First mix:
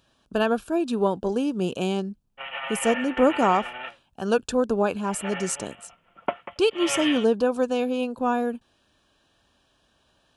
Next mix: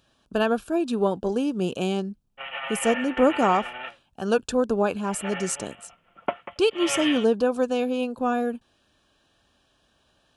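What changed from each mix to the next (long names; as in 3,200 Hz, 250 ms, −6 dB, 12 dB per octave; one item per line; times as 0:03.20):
master: add notch filter 960 Hz, Q 22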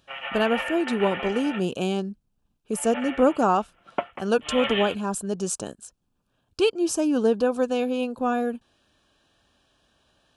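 background: entry −2.30 s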